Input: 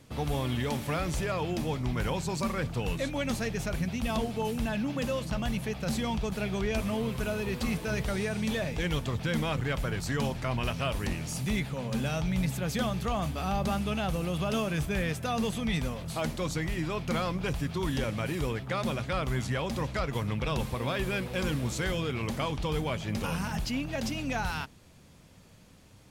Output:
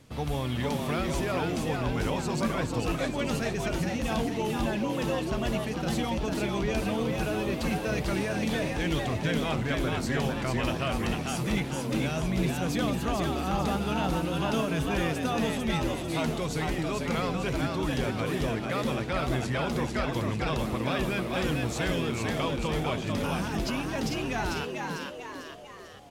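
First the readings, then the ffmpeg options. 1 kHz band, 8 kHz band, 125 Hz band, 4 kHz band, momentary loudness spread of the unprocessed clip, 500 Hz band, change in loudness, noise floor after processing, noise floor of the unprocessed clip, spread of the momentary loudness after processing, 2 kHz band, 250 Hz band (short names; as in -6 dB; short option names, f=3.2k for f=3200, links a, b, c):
+3.0 dB, +1.0 dB, +0.5 dB, +2.0 dB, 2 LU, +3.0 dB, +2.0 dB, -36 dBFS, -55 dBFS, 2 LU, +2.0 dB, +2.5 dB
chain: -filter_complex "[0:a]highshelf=f=11k:g=-3.5,asplit=2[a][b];[b]asplit=6[c][d][e][f][g][h];[c]adelay=447,afreqshift=110,volume=-3.5dB[i];[d]adelay=894,afreqshift=220,volume=-9.9dB[j];[e]adelay=1341,afreqshift=330,volume=-16.3dB[k];[f]adelay=1788,afreqshift=440,volume=-22.6dB[l];[g]adelay=2235,afreqshift=550,volume=-29dB[m];[h]adelay=2682,afreqshift=660,volume=-35.4dB[n];[i][j][k][l][m][n]amix=inputs=6:normalize=0[o];[a][o]amix=inputs=2:normalize=0"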